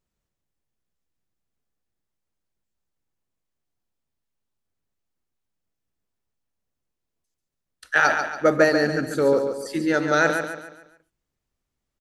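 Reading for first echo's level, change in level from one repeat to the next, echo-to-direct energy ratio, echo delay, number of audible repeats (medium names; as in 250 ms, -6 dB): -7.0 dB, -8.0 dB, -6.0 dB, 141 ms, 4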